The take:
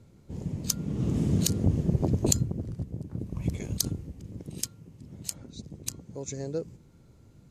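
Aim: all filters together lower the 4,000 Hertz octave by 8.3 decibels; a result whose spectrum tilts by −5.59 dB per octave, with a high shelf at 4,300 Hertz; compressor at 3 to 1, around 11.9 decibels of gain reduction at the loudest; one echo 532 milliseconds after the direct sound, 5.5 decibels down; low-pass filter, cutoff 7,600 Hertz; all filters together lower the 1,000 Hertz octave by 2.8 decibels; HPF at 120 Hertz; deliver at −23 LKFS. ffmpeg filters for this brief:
ffmpeg -i in.wav -af "highpass=120,lowpass=7600,equalizer=frequency=1000:width_type=o:gain=-3.5,equalizer=frequency=4000:width_type=o:gain=-7,highshelf=frequency=4300:gain=-4.5,acompressor=threshold=-39dB:ratio=3,aecho=1:1:532:0.531,volume=19dB" out.wav

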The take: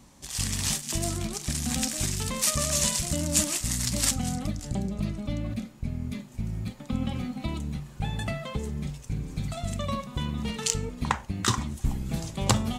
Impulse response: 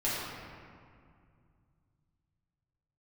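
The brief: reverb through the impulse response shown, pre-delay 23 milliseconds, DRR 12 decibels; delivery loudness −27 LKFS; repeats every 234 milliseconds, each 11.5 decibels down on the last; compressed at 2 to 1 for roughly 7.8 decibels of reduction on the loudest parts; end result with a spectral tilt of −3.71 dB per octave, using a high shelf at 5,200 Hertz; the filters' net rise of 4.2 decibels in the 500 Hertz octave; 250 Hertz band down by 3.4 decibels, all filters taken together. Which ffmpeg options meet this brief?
-filter_complex "[0:a]equalizer=frequency=250:width_type=o:gain=-6,equalizer=frequency=500:width_type=o:gain=6.5,highshelf=frequency=5200:gain=6,acompressor=threshold=-30dB:ratio=2,aecho=1:1:234|468|702:0.266|0.0718|0.0194,asplit=2[link_01][link_02];[1:a]atrim=start_sample=2205,adelay=23[link_03];[link_02][link_03]afir=irnorm=-1:irlink=0,volume=-20.5dB[link_04];[link_01][link_04]amix=inputs=2:normalize=0,volume=4dB"

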